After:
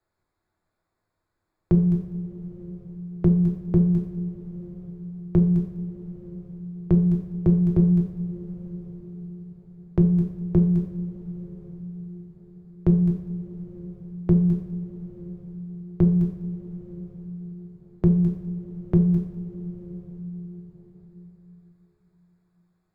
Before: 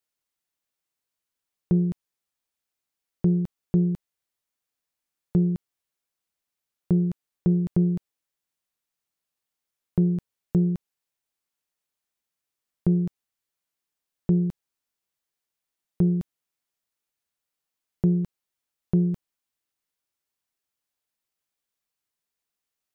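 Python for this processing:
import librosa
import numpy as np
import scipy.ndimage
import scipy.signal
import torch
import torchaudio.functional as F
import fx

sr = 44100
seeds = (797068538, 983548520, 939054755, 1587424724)

y = fx.wiener(x, sr, points=15)
y = fx.low_shelf(y, sr, hz=74.0, db=11.5)
y = y + 10.0 ** (-21.5 / 20.0) * np.pad(y, (int(200 * sr / 1000.0), 0))[:len(y)]
y = fx.rev_double_slope(y, sr, seeds[0], early_s=0.54, late_s=4.4, knee_db=-21, drr_db=-1.5)
y = fx.band_squash(y, sr, depth_pct=40)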